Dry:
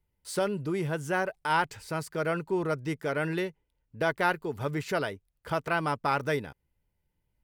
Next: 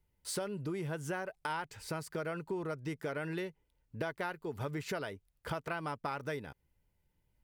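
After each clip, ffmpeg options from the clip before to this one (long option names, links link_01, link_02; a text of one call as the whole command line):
ffmpeg -i in.wav -af "acompressor=threshold=-36dB:ratio=6,volume=1dB" out.wav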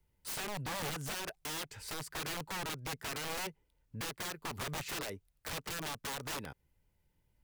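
ffmpeg -i in.wav -filter_complex "[0:a]acrossover=split=360|610|3400[link_01][link_02][link_03][link_04];[link_02]alimiter=level_in=16.5dB:limit=-24dB:level=0:latency=1:release=70,volume=-16.5dB[link_05];[link_01][link_05][link_03][link_04]amix=inputs=4:normalize=0,aeval=exprs='(mod(59.6*val(0)+1,2)-1)/59.6':channel_layout=same,volume=1.5dB" out.wav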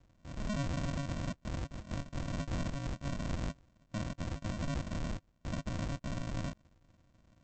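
ffmpeg -i in.wav -filter_complex "[0:a]asplit=2[link_01][link_02];[link_02]highpass=frequency=720:poles=1,volume=25dB,asoftclip=type=tanh:threshold=-33.5dB[link_03];[link_01][link_03]amix=inputs=2:normalize=0,lowpass=frequency=1200:poles=1,volume=-6dB,aresample=16000,acrusher=samples=38:mix=1:aa=0.000001,aresample=44100,volume=5dB" out.wav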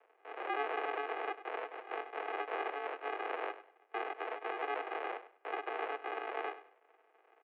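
ffmpeg -i in.wav -af "aecho=1:1:99|198|297:0.2|0.0479|0.0115,highpass=frequency=320:width_type=q:width=0.5412,highpass=frequency=320:width_type=q:width=1.307,lowpass=frequency=2500:width_type=q:width=0.5176,lowpass=frequency=2500:width_type=q:width=0.7071,lowpass=frequency=2500:width_type=q:width=1.932,afreqshift=150,volume=7dB" out.wav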